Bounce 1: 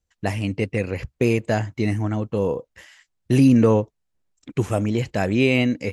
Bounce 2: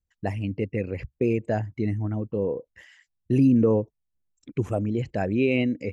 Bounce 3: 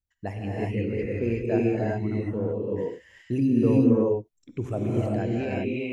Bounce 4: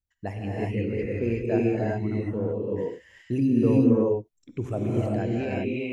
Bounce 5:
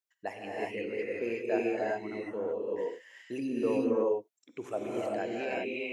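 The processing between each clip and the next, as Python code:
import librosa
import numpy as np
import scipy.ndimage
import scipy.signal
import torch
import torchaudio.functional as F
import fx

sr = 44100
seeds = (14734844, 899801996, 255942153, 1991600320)

y1 = fx.envelope_sharpen(x, sr, power=1.5)
y1 = F.gain(torch.from_numpy(y1), -4.0).numpy()
y2 = fx.fade_out_tail(y1, sr, length_s=0.86)
y2 = fx.rev_gated(y2, sr, seeds[0], gate_ms=410, shape='rising', drr_db=-4.0)
y2 = F.gain(torch.from_numpy(y2), -5.0).numpy()
y3 = y2
y4 = scipy.signal.sosfilt(scipy.signal.butter(2, 500.0, 'highpass', fs=sr, output='sos'), y3)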